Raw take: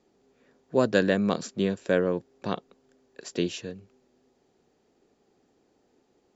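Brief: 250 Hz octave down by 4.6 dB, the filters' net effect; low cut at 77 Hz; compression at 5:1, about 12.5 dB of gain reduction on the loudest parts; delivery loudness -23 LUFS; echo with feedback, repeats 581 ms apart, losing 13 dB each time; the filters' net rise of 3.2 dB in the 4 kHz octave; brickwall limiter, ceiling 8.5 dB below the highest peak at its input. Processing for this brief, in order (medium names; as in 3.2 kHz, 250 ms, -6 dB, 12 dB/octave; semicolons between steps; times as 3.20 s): high-pass 77 Hz; peaking EQ 250 Hz -6.5 dB; peaking EQ 4 kHz +4 dB; compression 5:1, threshold -33 dBFS; peak limiter -28 dBFS; feedback delay 581 ms, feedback 22%, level -13 dB; trim +19 dB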